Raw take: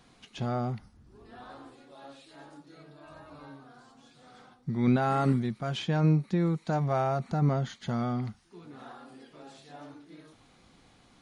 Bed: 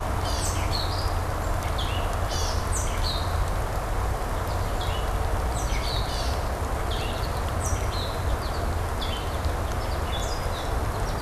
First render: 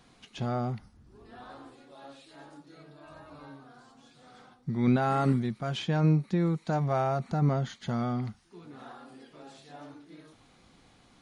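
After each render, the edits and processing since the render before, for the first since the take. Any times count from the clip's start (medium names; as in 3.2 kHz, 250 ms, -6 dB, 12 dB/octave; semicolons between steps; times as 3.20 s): no audible change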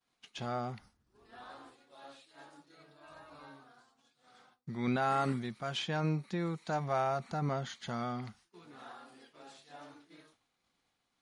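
expander -48 dBFS; bass shelf 470 Hz -11 dB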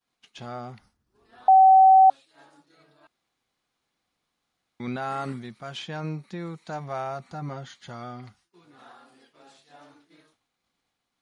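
1.48–2.10 s: bleep 763 Hz -10.5 dBFS; 3.07–4.80 s: room tone; 7.21–8.79 s: comb of notches 220 Hz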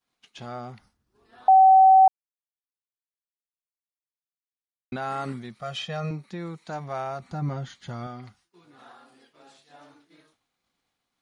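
2.08–4.92 s: mute; 5.59–6.11 s: comb 1.6 ms, depth 84%; 7.22–8.07 s: bass shelf 230 Hz +9.5 dB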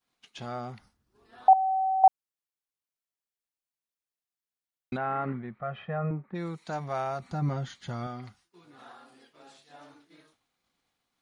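1.53–2.04 s: Gaussian low-pass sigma 16 samples; 4.96–6.34 s: low-pass 2.4 kHz -> 1.6 kHz 24 dB/octave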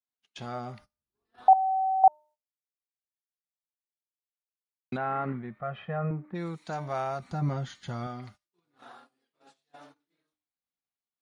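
de-hum 302.7 Hz, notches 38; gate -51 dBFS, range -22 dB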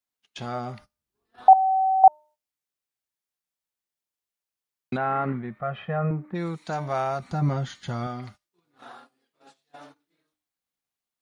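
trim +5 dB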